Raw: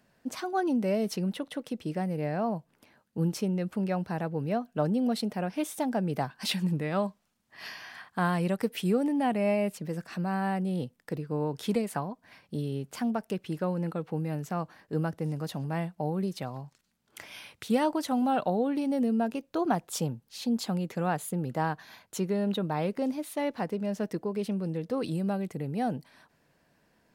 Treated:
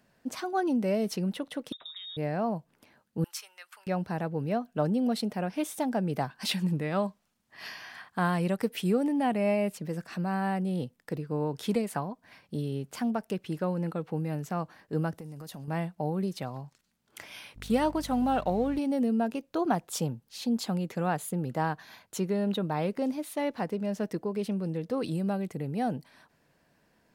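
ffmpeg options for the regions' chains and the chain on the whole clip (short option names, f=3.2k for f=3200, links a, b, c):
-filter_complex "[0:a]asettb=1/sr,asplit=3[a][b][c];[a]atrim=end=1.724[d];[b]atrim=start=1.72:end=2.17,asetpts=PTS-STARTPTS,afade=t=in:d=0.004:c=qsin,afade=t=out:st=0.446:d=0.004:c=qsin,lowpass=f=3.3k:t=q:w=0.5098,lowpass=f=3.3k:t=q:w=0.6013,lowpass=f=3.3k:t=q:w=0.9,lowpass=f=3.3k:t=q:w=2.563,afreqshift=-3900,acompressor=threshold=-39dB:ratio=10:attack=3.2:release=140:knee=1:detection=peak,aeval=exprs='0.0224*(abs(mod(val(0)/0.0224+3,4)-2)-1)':c=same[e];[c]atrim=start=2.166[f];[d][e]acrossfade=d=0.004:c1=hsin:c2=qsin[g];[g][f]acrossfade=d=0.004:c1=qsin:c2=hsin,asettb=1/sr,asplit=3[h][i][j];[h]atrim=end=3.244[k];[i]atrim=start=3.24:end=3.87,asetpts=PTS-STARTPTS,afade=t=in:d=0.004:c=qsin,afade=t=out:st=0.626:d=0.004:c=qsin,highpass=f=1.1k:w=0.5412,highpass=f=1.1k:w=1.3066,highshelf=f=8.9k:g=3.5[l];[j]atrim=start=3.866[m];[k][l]acrossfade=d=0.004:c1=hsin:c2=qsin[n];[n][m]acrossfade=d=0.004:c1=qsin:c2=hsin,asettb=1/sr,asplit=3[o][p][q];[o]atrim=end=15.144[r];[p]atrim=start=15.14:end=15.68,asetpts=PTS-STARTPTS,afade=t=in:d=0.004:c=qsin,afade=t=out:st=0.536:d=0.004:c=qsin,highshelf=f=6.7k:g=10,acompressor=threshold=-39dB:ratio=6:attack=3.2:release=140:knee=1:detection=peak[s];[q]atrim=start=15.676[t];[r][s]acrossfade=d=0.004:c1=hsin:c2=qsin[u];[u][t]acrossfade=d=0.004:c1=qsin:c2=hsin,asettb=1/sr,asplit=3[v][w][x];[v]atrim=end=17.564[y];[w]atrim=start=17.56:end=18.79,asetpts=PTS-STARTPTS,afade=t=in:d=0.004:c=qsin,afade=t=out:st=1.226:d=0.004:c=qsin,aeval=exprs='val(0)+0.00794*(sin(2*PI*50*n/s)+sin(2*PI*2*50*n/s)/2+sin(2*PI*3*50*n/s)/3+sin(2*PI*4*50*n/s)/4+sin(2*PI*5*50*n/s)/5)':c=same,aeval=exprs='sgn(val(0))*max(abs(val(0))-0.00224,0)':c=same[z];[x]atrim=start=18.786[aa];[y][z]acrossfade=d=0.004:c1=hsin:c2=qsin[ab];[ab][aa]acrossfade=d=0.004:c1=qsin:c2=hsin"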